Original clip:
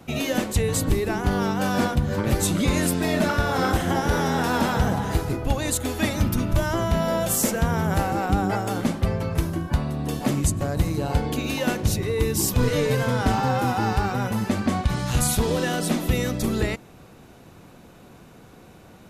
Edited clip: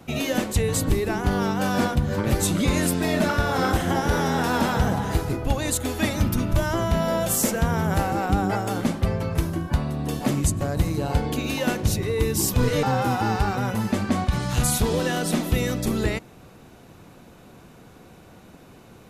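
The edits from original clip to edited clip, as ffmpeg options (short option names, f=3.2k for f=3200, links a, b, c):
-filter_complex "[0:a]asplit=2[a][b];[a]atrim=end=12.832[c];[b]atrim=start=13.398[d];[c][d]acrossfade=d=0.004:c1=hsin:c2=hsin"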